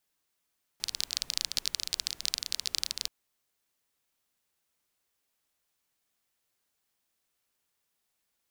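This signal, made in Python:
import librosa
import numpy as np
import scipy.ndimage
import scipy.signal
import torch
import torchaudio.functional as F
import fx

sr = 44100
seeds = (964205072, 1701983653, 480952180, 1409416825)

y = fx.rain(sr, seeds[0], length_s=2.28, drops_per_s=22.0, hz=4500.0, bed_db=-20.5)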